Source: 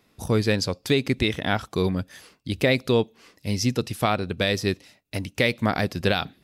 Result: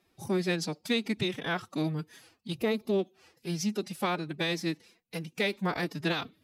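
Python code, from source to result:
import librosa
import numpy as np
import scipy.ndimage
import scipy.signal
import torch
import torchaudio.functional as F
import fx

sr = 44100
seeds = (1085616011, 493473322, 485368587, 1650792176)

y = fx.spec_box(x, sr, start_s=2.56, length_s=0.43, low_hz=810.0, high_hz=10000.0, gain_db=-7)
y = fx.pitch_keep_formants(y, sr, semitones=9.0)
y = y * 10.0 ** (-7.0 / 20.0)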